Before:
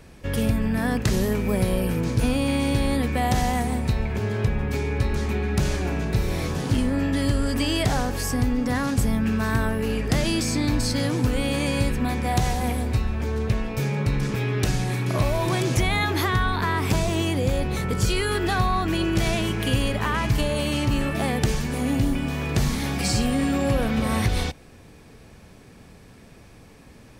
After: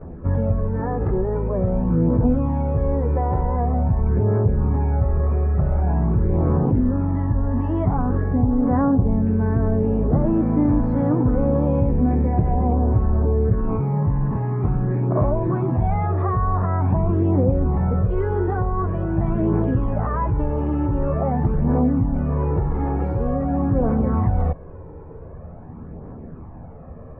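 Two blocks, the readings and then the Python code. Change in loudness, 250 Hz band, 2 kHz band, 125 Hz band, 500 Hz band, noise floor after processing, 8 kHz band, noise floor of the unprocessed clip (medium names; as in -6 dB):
+3.0 dB, +3.5 dB, -13.0 dB, +5.0 dB, +3.0 dB, -38 dBFS, under -40 dB, -48 dBFS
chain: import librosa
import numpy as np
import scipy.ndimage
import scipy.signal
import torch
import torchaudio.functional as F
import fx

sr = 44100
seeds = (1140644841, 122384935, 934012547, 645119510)

p1 = fx.over_compress(x, sr, threshold_db=-30.0, ratio=-1.0)
p2 = x + F.gain(torch.from_numpy(p1), 0.0).numpy()
p3 = fx.chorus_voices(p2, sr, voices=2, hz=0.23, base_ms=12, depth_ms=1.2, mix_pct=70)
p4 = scipy.signal.sosfilt(scipy.signal.butter(4, 1100.0, 'lowpass', fs=sr, output='sos'), p3)
y = F.gain(torch.from_numpy(p4), 2.5).numpy()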